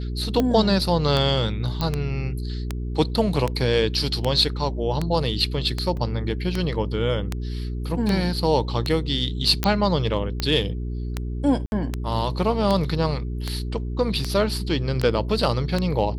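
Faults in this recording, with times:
hum 60 Hz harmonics 7 -28 dBFS
tick 78 rpm -10 dBFS
1.81 s: pop -12 dBFS
5.97 s: dropout 2.2 ms
9.64 s: pop -5 dBFS
11.66–11.72 s: dropout 61 ms

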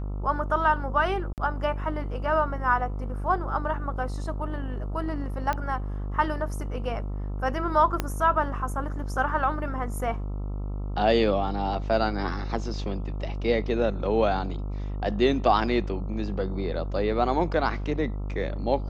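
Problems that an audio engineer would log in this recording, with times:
buzz 50 Hz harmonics 27 -31 dBFS
1.33–1.38 s: dropout 48 ms
5.53 s: pop -15 dBFS
8.00 s: pop -11 dBFS

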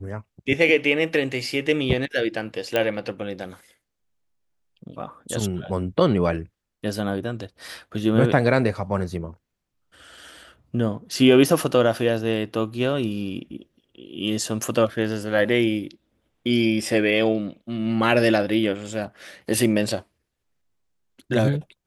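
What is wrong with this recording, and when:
2.76 s: pop -9 dBFS

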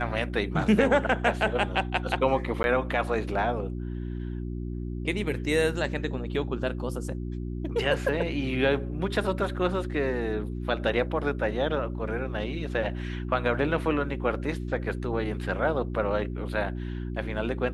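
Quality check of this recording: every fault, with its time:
hum 60 Hz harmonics 6 -33 dBFS
2.63–2.64 s: dropout 11 ms

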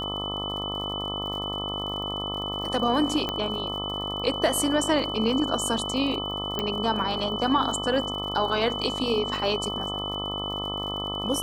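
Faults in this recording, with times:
buzz 50 Hz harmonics 26 -34 dBFS
crackle 71 per s -36 dBFS
whine 3 kHz -31 dBFS
3.29 s: pop -14 dBFS
6.59 s: pop -13 dBFS

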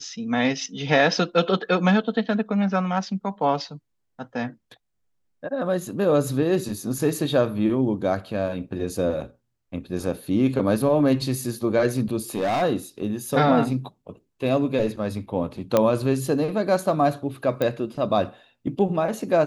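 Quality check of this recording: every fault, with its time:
12.35–12.63 s: clipped -20 dBFS
15.77 s: pop -6 dBFS
17.62 s: pop -12 dBFS

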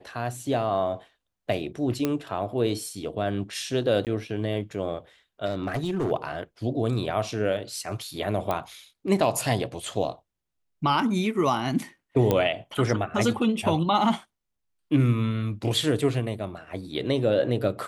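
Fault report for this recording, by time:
2.05 s: pop -11 dBFS
4.05–4.07 s: dropout 18 ms
5.45–6.12 s: clipped -22.5 dBFS
8.51 s: pop -14 dBFS
12.31 s: pop -10 dBFS

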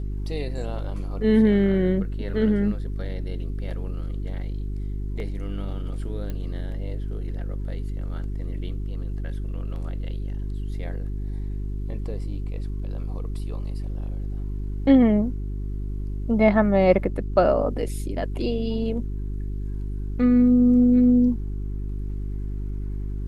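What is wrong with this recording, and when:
hum 50 Hz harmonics 8 -29 dBFS
6.30 s: pop -20 dBFS

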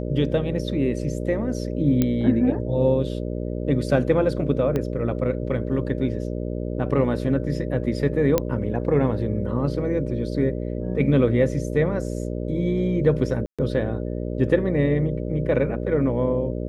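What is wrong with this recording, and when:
buzz 60 Hz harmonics 10 -28 dBFS
2.02 s: pop -8 dBFS
4.76 s: pop -13 dBFS
8.38 s: pop -6 dBFS
13.46–13.59 s: dropout 126 ms

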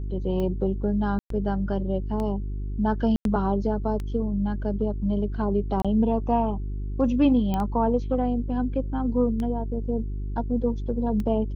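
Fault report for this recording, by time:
hum 50 Hz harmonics 8 -30 dBFS
tick 33 1/3 rpm -20 dBFS
1.19–1.30 s: dropout 113 ms
3.16–3.25 s: dropout 92 ms
5.82–5.85 s: dropout 26 ms
7.54 s: pop -15 dBFS

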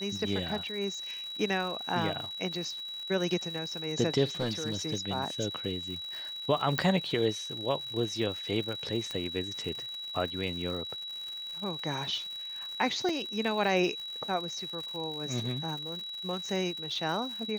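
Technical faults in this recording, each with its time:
crackle 180 per s -38 dBFS
whine 3.9 kHz -37 dBFS
4.40–4.95 s: clipped -25.5 dBFS
6.78 s: pop -14 dBFS
9.11 s: pop -21 dBFS
13.09 s: dropout 3.2 ms

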